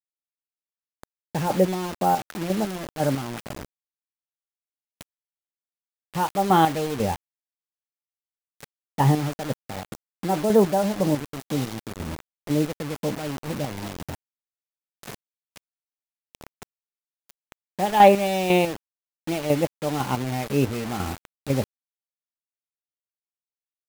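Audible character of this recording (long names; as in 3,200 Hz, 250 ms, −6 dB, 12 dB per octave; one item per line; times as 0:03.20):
chopped level 2 Hz, depth 60%, duty 30%
a quantiser's noise floor 6 bits, dither none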